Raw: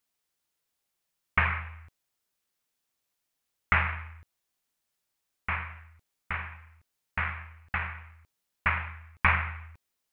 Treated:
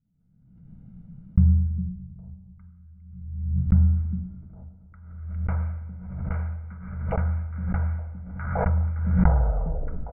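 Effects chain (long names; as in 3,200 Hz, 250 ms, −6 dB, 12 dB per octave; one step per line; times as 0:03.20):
turntable brake at the end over 0.98 s
treble cut that deepens with the level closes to 820 Hz, closed at −25 dBFS
low-pass filter 2,500 Hz 6 dB per octave
flat-topped bell 650 Hz −9 dB 1 octave
comb filter 1.4 ms, depth 89%
rectangular room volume 3,800 cubic metres, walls mixed, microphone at 0.65 metres
low-pass filter sweep 180 Hz → 510 Hz, 0:03.25–0:05.04
echo through a band-pass that steps 406 ms, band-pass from 220 Hz, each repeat 1.4 octaves, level −6 dB
background raised ahead of every attack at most 45 dB per second
level +7 dB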